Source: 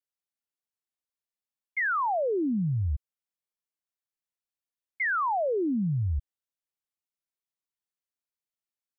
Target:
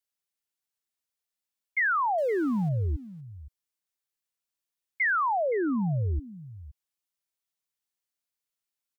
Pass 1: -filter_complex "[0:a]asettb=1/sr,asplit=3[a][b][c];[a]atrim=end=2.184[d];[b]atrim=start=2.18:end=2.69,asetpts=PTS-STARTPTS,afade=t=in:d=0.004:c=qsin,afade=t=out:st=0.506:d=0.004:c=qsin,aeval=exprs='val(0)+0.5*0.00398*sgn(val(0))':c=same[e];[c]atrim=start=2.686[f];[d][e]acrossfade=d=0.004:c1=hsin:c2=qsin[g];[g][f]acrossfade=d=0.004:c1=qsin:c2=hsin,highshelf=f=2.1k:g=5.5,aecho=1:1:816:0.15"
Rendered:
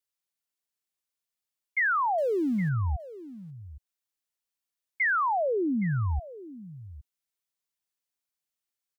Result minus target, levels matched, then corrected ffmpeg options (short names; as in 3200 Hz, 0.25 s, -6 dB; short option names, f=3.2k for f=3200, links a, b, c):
echo 0.298 s late
-filter_complex "[0:a]asettb=1/sr,asplit=3[a][b][c];[a]atrim=end=2.184[d];[b]atrim=start=2.18:end=2.69,asetpts=PTS-STARTPTS,afade=t=in:d=0.004:c=qsin,afade=t=out:st=0.506:d=0.004:c=qsin,aeval=exprs='val(0)+0.5*0.00398*sgn(val(0))':c=same[e];[c]atrim=start=2.686[f];[d][e]acrossfade=d=0.004:c1=hsin:c2=qsin[g];[g][f]acrossfade=d=0.004:c1=qsin:c2=hsin,highshelf=f=2.1k:g=5.5,aecho=1:1:518:0.15"